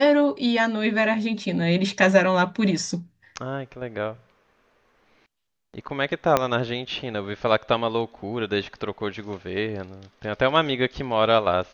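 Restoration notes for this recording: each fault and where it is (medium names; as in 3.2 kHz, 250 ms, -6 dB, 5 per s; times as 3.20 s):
6.37 s: pop -5 dBFS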